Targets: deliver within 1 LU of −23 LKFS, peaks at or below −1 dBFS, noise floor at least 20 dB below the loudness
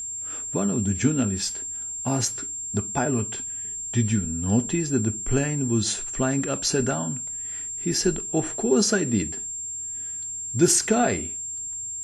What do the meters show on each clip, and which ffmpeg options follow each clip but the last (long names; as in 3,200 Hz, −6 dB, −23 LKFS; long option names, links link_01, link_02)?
interfering tone 7,400 Hz; level of the tone −30 dBFS; integrated loudness −24.5 LKFS; sample peak −7.5 dBFS; target loudness −23.0 LKFS
→ -af "bandreject=frequency=7400:width=30"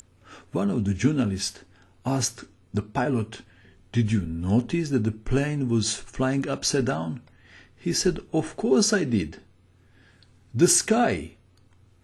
interfering tone none found; integrated loudness −25.0 LKFS; sample peak −8.0 dBFS; target loudness −23.0 LKFS
→ -af "volume=2dB"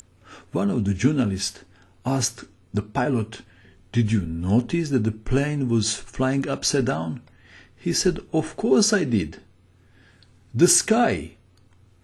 integrated loudness −23.0 LKFS; sample peak −6.0 dBFS; background noise floor −56 dBFS